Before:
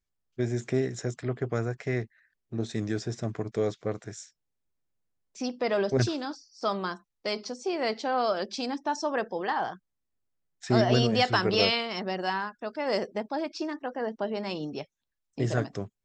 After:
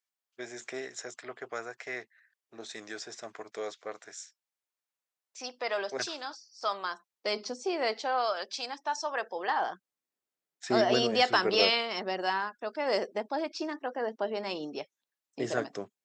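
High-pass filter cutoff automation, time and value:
0:06.85 740 Hz
0:07.46 220 Hz
0:08.34 770 Hz
0:09.14 770 Hz
0:09.72 320 Hz

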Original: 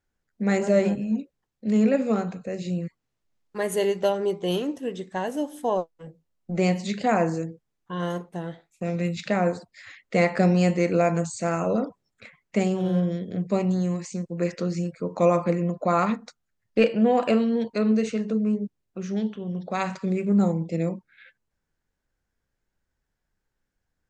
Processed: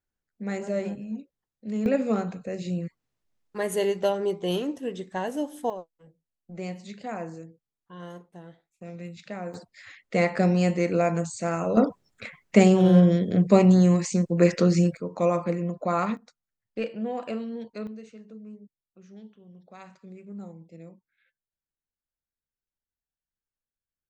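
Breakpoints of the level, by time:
−8.5 dB
from 0:01.86 −1.5 dB
from 0:05.70 −12.5 dB
from 0:09.54 −2 dB
from 0:11.77 +7 dB
from 0:14.97 −3.5 dB
from 0:16.17 −11 dB
from 0:17.87 −19.5 dB

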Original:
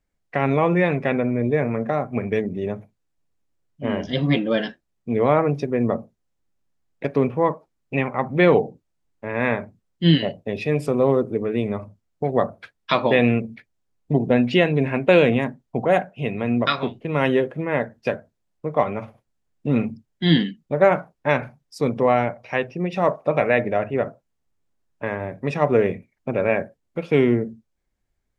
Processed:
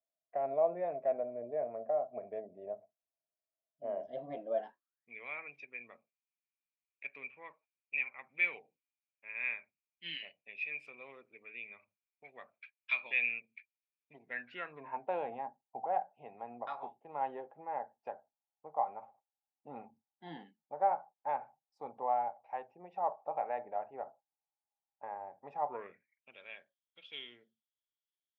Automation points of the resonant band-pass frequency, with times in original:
resonant band-pass, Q 14
0:04.55 650 Hz
0:05.16 2,400 Hz
0:14.14 2,400 Hz
0:15.02 820 Hz
0:25.68 820 Hz
0:26.37 3,300 Hz

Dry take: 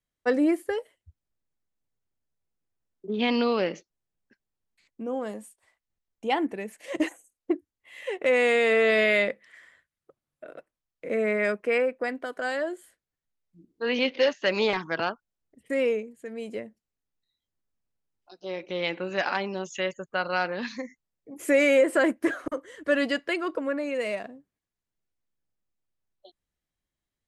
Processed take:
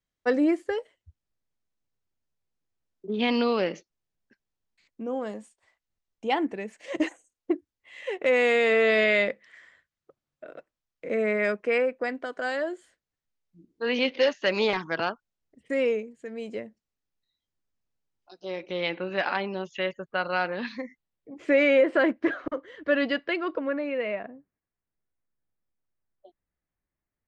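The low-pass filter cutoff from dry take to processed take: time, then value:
low-pass filter 24 dB per octave
0:18.50 7,300 Hz
0:19.05 4,300 Hz
0:23.68 4,300 Hz
0:24.32 2,200 Hz

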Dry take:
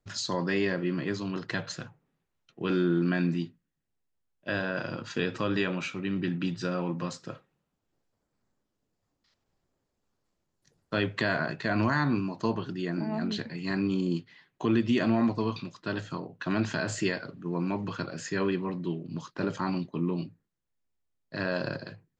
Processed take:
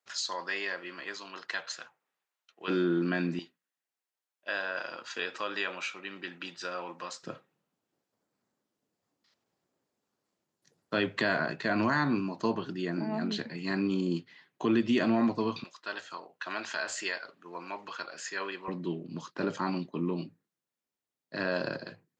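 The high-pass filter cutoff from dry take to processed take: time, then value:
820 Hz
from 0:02.68 240 Hz
from 0:03.39 670 Hz
from 0:07.23 180 Hz
from 0:15.64 740 Hz
from 0:18.68 200 Hz

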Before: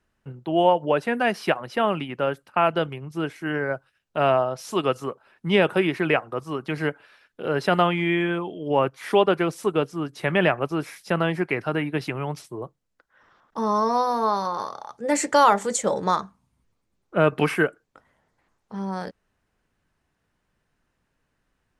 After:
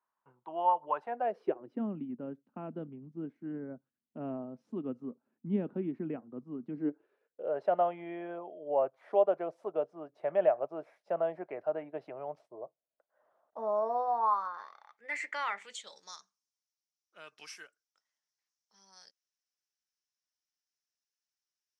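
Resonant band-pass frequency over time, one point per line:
resonant band-pass, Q 5.8
0:00.94 1,000 Hz
0:01.83 240 Hz
0:06.67 240 Hz
0:07.53 630 Hz
0:14.04 630 Hz
0:14.70 2,100 Hz
0:15.58 2,100 Hz
0:16.02 5,600 Hz

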